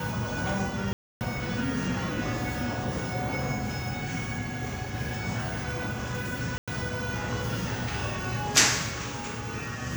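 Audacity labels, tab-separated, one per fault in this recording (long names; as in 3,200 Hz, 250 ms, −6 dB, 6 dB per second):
0.930000	1.210000	drop-out 279 ms
6.580000	6.680000	drop-out 96 ms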